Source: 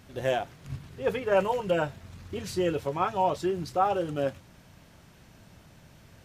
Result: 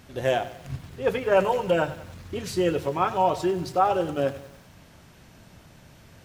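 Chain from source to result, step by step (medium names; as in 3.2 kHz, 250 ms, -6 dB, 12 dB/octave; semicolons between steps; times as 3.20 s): hum notches 50/100/150/200 Hz; bit-crushed delay 95 ms, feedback 55%, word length 8-bit, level -15 dB; trim +3.5 dB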